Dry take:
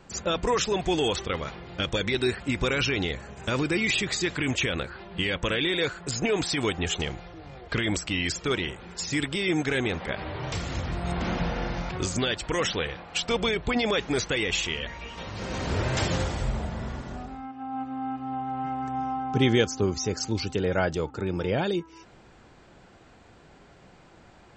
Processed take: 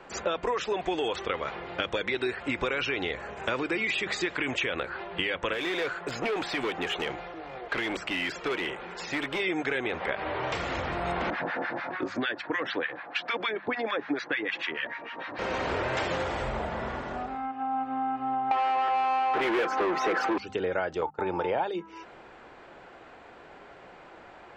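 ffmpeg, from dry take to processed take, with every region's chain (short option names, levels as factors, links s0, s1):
-filter_complex "[0:a]asettb=1/sr,asplit=3[s0][s1][s2];[s0]atrim=end=5.534[s3];[s1]atrim=start=5.53:end=9.4,asetpts=PTS-STARTPTS,afade=t=in:d=0.004:c=qsin,afade=t=out:st=3.866:d=0.004:c=qsin,acrossover=split=3800[s4][s5];[s5]acompressor=threshold=0.01:ratio=4:attack=1:release=60[s6];[s4][s6]amix=inputs=2:normalize=0,volume=23.7,asoftclip=hard,volume=0.0422,equalizer=f=80:w=2.3:g=-11.5[s7];[s2]atrim=start=9.396[s8];[s3][s7]acrossfade=d=0.004:c1=hsin:c2=qsin[s9];[s9][s8]acrossfade=d=0.004:c1=qsin:c2=hsin,asettb=1/sr,asplit=3[s10][s11][s12];[s10]atrim=end=11.304[s13];[s11]atrim=start=11.3:end=15.39,asetpts=PTS-STARTPTS,afade=t=in:d=0.004:c=qsin,afade=t=out:st=4.086:d=0.004:c=qsin,highpass=f=130:w=0.5412,highpass=f=130:w=1.3066,equalizer=f=180:t=q:w=4:g=-7,equalizer=f=290:t=q:w=4:g=8,equalizer=f=430:t=q:w=4:g=-5,equalizer=f=1700:t=q:w=4:g=8,equalizer=f=3000:t=q:w=4:g=-5,lowpass=f=4800:w=0.5412,lowpass=f=4800:w=1.3066,acrossover=split=980[s14][s15];[s14]aeval=exprs='val(0)*(1-1/2+1/2*cos(2*PI*6.7*n/s))':c=same[s16];[s15]aeval=exprs='val(0)*(1-1/2-1/2*cos(2*PI*6.7*n/s))':c=same[s17];[s16][s17]amix=inputs=2:normalize=0[s18];[s12]atrim=start=15.386[s19];[s13][s18]acrossfade=d=0.004:c1=hsin:c2=qsin[s20];[s20][s19]acrossfade=d=0.004:c1=qsin:c2=hsin,asettb=1/sr,asplit=3[s21][s22][s23];[s21]atrim=end=18.514[s24];[s22]atrim=start=18.51:end=20.38,asetpts=PTS-STARTPTS,afade=t=in:d=0.004:c=qsin,afade=t=out:st=1.866:d=0.004:c=qsin,acrossover=split=160 2700:gain=0.0891 1 0.0891[s25][s26][s27];[s25][s26][s27]amix=inputs=3:normalize=0,aecho=1:1:5.9:0.62,atrim=end_sample=82467,asplit=2[s28][s29];[s29]highpass=f=720:p=1,volume=56.2,asoftclip=type=tanh:threshold=0.376[s30];[s28][s30]amix=inputs=2:normalize=0,lowpass=f=3700:p=1,volume=0.501[s31];[s23]atrim=start=20.376[s32];[s24][s31]acrossfade=d=0.004:c1=hsin:c2=qsin[s33];[s33][s32]acrossfade=d=0.004:c1=qsin:c2=hsin,asettb=1/sr,asplit=3[s34][s35][s36];[s34]atrim=end=21.014[s37];[s35]atrim=start=21.01:end=21.69,asetpts=PTS-STARTPTS,afade=t=in:d=0.004:c=qsin,afade=t=out:st=0.676:d=0.004:c=qsin,equalizer=f=860:w=2.1:g=13,agate=range=0.0708:threshold=0.0224:ratio=16:release=100:detection=peak[s38];[s36]atrim=start=21.686[s39];[s37][s38]acrossfade=d=0.004:c1=hsin:c2=qsin[s40];[s40][s39]acrossfade=d=0.004:c1=qsin:c2=hsin,acrossover=split=340 3100:gain=0.2 1 0.178[s41][s42][s43];[s41][s42][s43]amix=inputs=3:normalize=0,bandreject=f=50:t=h:w=6,bandreject=f=100:t=h:w=6,bandreject=f=150:t=h:w=6,bandreject=f=200:t=h:w=6,acompressor=threshold=0.02:ratio=5,volume=2.37"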